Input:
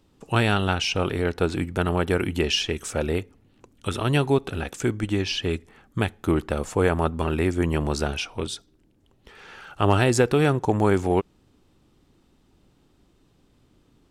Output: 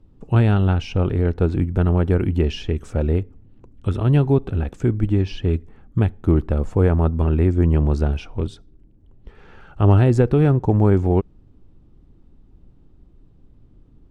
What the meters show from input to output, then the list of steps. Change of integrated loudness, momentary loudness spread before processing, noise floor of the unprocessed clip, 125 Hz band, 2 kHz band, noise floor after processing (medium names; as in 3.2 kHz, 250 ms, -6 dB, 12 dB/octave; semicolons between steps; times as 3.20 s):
+4.5 dB, 11 LU, -62 dBFS, +9.0 dB, -7.0 dB, -52 dBFS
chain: tilt EQ -4 dB/octave; trim -3.5 dB